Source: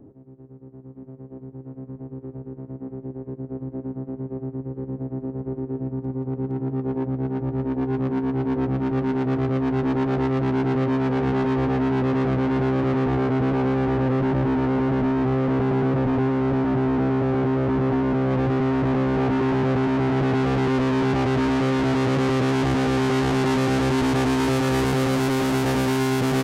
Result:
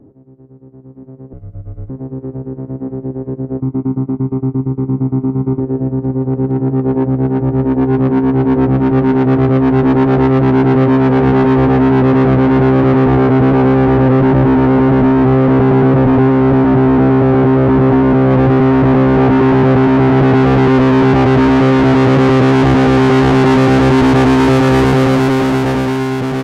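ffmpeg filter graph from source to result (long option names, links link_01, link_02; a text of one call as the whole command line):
ffmpeg -i in.wav -filter_complex "[0:a]asettb=1/sr,asplit=3[link_01][link_02][link_03];[link_01]atrim=end=1.334[link_04];[link_02]atrim=start=1.33:end=1.9,asetpts=PTS-STARTPTS,afade=type=in:duration=0.004:curve=qsin,afade=type=out:start_time=0.566:duration=0.004:curve=qsin,aecho=1:1:1.3:0.59,atrim=end_sample=25137,afreqshift=-230,highshelf=frequency=4200:gain=6[link_05];[link_03]atrim=start=1.896[link_06];[link_04][link_05]acrossfade=duration=0.004:curve1=hsin:curve2=qsin[link_07];[link_07][link_06]acrossfade=duration=0.004:curve1=qsin:curve2=hsin,asettb=1/sr,asplit=3[link_08][link_09][link_10];[link_08]atrim=end=3.604[link_11];[link_09]atrim=start=3.6:end=5.6,asetpts=PTS-STARTPTS,afade=type=in:duration=0.004:curve=qsin,afade=type=out:start_time=1.996:duration=0.004:curve=qsin,highpass=100,aecho=1:1:0.9:0.94,atrim=end_sample=88200,agate=range=-13dB:threshold=-33dB:ratio=16:release=100:detection=peak[link_12];[link_10]atrim=start=5.596[link_13];[link_11][link_12]acrossfade=duration=0.004:curve1=hsin:curve2=qsin[link_14];[link_14][link_13]acrossfade=duration=0.004:curve1=qsin:curve2=hsin,highshelf=frequency=4500:gain=-11.5,dynaudnorm=framelen=330:gausssize=9:maxgain=8dB,volume=4dB" out.wav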